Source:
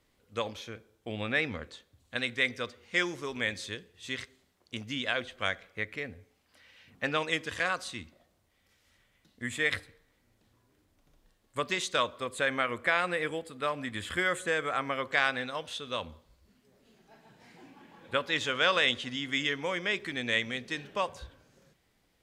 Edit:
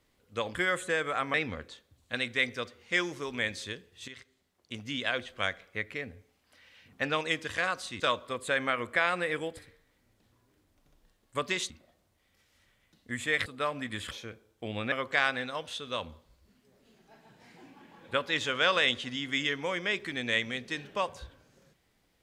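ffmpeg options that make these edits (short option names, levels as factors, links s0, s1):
-filter_complex "[0:a]asplit=10[s0][s1][s2][s3][s4][s5][s6][s7][s8][s9];[s0]atrim=end=0.552[s10];[s1]atrim=start=14.128:end=14.922[s11];[s2]atrim=start=1.358:end=4.1,asetpts=PTS-STARTPTS,afade=t=out:st=2.738:d=0.004:c=hsin:silence=0.223872[s12];[s3]atrim=start=4.1:end=8.022,asetpts=PTS-STARTPTS,afade=t=in:d=0.9:silence=0.223872[s13];[s4]atrim=start=11.908:end=13.482[s14];[s5]atrim=start=9.778:end=11.912[s15];[s6]atrim=start=8.018:end=9.782[s16];[s7]atrim=start=13.478:end=14.132[s17];[s8]atrim=start=0.548:end=1.362[s18];[s9]atrim=start=14.918[s19];[s10][s11]acrossfade=d=0.004:c1=hsin:c2=hsin[s20];[s12][s13]concat=n=2:v=0:a=1[s21];[s20][s21]acrossfade=d=0.004:c1=hsin:c2=hsin[s22];[s22][s14]acrossfade=d=0.004:c1=hsin:c2=hsin[s23];[s23][s15]acrossfade=d=0.004:c1=hsin:c2=hsin[s24];[s24][s16]acrossfade=d=0.004:c1=hsin:c2=hsin[s25];[s25][s17]acrossfade=d=0.004:c1=hsin:c2=hsin[s26];[s26][s18]acrossfade=d=0.004:c1=hsin:c2=hsin[s27];[s27][s19]acrossfade=d=0.004:c1=hsin:c2=hsin"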